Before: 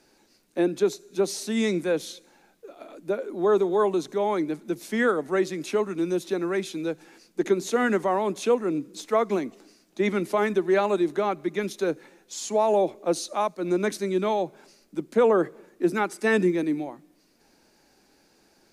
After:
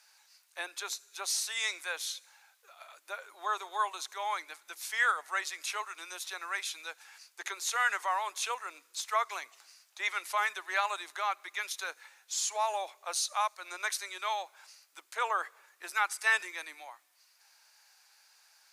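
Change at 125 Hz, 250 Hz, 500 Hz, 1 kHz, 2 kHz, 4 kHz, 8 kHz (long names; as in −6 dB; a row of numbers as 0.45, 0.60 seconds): below −40 dB, below −35 dB, −21.5 dB, −3.5 dB, +0.5 dB, +1.5 dB, +2.5 dB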